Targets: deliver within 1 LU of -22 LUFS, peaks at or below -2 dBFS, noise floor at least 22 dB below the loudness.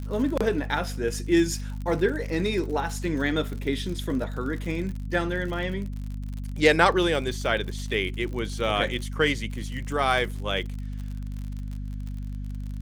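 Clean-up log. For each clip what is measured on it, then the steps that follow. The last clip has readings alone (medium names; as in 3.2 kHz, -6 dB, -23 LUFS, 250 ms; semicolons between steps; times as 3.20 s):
tick rate 55 per s; hum 50 Hz; highest harmonic 250 Hz; hum level -30 dBFS; loudness -27.0 LUFS; peak level -4.5 dBFS; loudness target -22.0 LUFS
-> de-click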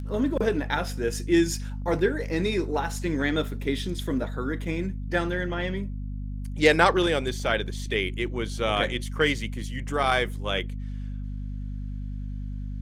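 tick rate 0.23 per s; hum 50 Hz; highest harmonic 250 Hz; hum level -30 dBFS
-> de-hum 50 Hz, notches 5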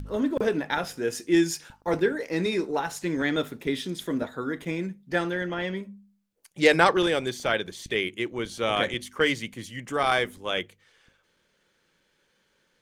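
hum not found; loudness -27.0 LUFS; peak level -4.5 dBFS; loudness target -22.0 LUFS
-> trim +5 dB; peak limiter -2 dBFS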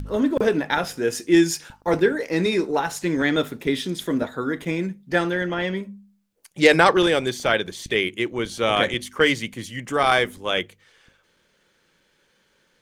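loudness -22.0 LUFS; peak level -2.0 dBFS; noise floor -65 dBFS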